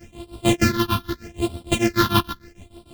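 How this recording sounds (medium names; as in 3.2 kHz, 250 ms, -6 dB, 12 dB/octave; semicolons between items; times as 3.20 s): a buzz of ramps at a fixed pitch in blocks of 128 samples; phasing stages 6, 0.8 Hz, lowest notch 540–1800 Hz; tremolo triangle 6.6 Hz, depth 100%; a shimmering, thickened sound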